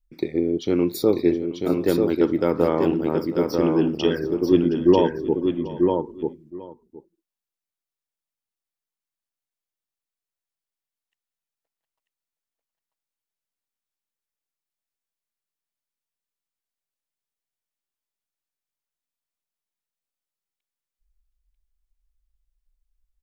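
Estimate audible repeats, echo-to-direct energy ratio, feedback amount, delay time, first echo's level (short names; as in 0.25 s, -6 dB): 3, -3.5 dB, no steady repeat, 0.719 s, -17.0 dB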